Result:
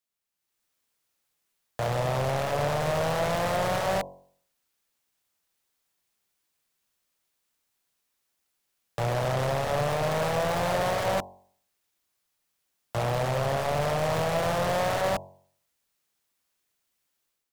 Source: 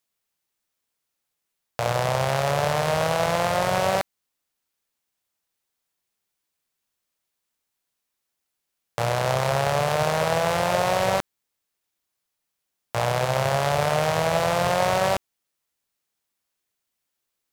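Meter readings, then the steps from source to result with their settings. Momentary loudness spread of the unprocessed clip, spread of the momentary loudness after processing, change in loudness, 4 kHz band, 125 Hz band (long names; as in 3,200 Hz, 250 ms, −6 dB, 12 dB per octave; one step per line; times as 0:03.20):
6 LU, 5 LU, −4.5 dB, −6.0 dB, −2.5 dB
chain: soft clipping −25 dBFS, distortion −6 dB
automatic gain control gain up to 10.5 dB
hum removal 46.46 Hz, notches 23
level −7.5 dB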